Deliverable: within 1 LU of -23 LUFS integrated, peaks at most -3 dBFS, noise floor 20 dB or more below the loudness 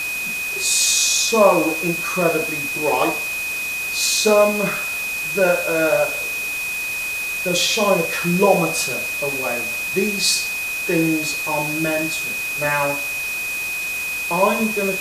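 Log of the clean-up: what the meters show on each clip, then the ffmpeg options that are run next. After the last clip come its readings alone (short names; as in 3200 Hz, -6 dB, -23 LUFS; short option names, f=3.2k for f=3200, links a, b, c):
steady tone 2500 Hz; tone level -23 dBFS; noise floor -25 dBFS; noise floor target -39 dBFS; loudness -19.0 LUFS; peak -1.0 dBFS; loudness target -23.0 LUFS
-> -af "bandreject=f=2.5k:w=30"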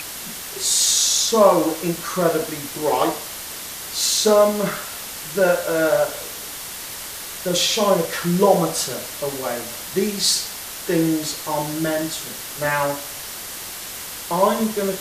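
steady tone none; noise floor -33 dBFS; noise floor target -41 dBFS
-> -af "afftdn=nr=8:nf=-33"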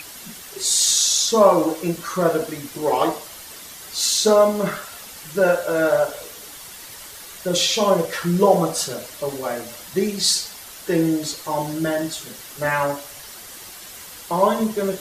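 noise floor -39 dBFS; noise floor target -40 dBFS
-> -af "afftdn=nr=6:nf=-39"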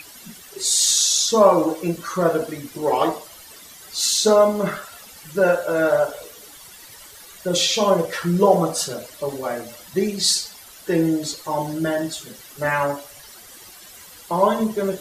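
noise floor -44 dBFS; loudness -20.0 LUFS; peak -1.5 dBFS; loudness target -23.0 LUFS
-> -af "volume=-3dB"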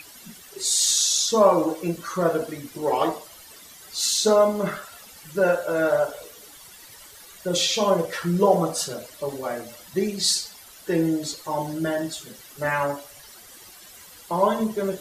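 loudness -23.0 LUFS; peak -4.5 dBFS; noise floor -47 dBFS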